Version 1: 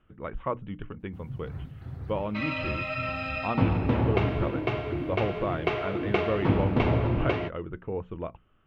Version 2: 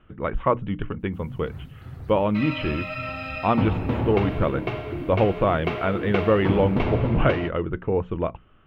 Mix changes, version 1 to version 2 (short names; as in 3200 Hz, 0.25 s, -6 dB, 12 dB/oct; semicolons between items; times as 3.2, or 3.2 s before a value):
speech +9.5 dB; first sound: add high shelf 4900 Hz +10.5 dB